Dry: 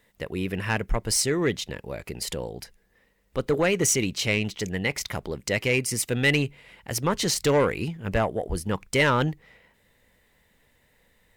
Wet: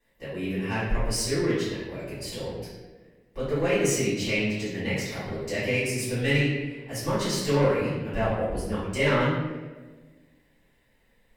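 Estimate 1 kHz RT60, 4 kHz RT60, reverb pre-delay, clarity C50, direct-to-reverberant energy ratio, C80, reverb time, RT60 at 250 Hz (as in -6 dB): 1.1 s, 0.80 s, 4 ms, -0.5 dB, -14.5 dB, 3.0 dB, 1.4 s, 1.9 s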